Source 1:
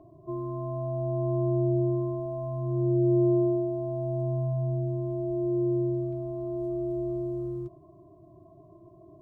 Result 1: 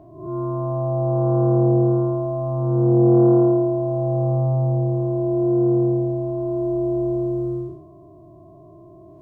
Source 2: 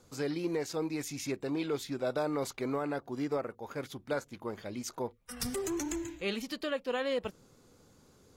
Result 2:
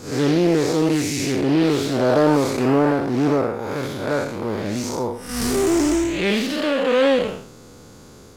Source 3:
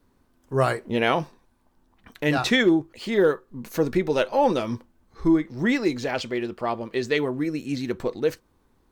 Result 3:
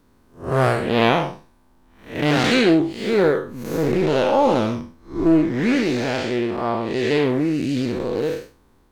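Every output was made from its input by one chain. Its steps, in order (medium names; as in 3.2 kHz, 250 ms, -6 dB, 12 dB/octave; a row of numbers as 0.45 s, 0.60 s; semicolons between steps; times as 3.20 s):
spectral blur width 192 ms; loudspeaker Doppler distortion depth 0.25 ms; normalise loudness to -20 LUFS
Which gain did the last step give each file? +9.0 dB, +19.0 dB, +9.0 dB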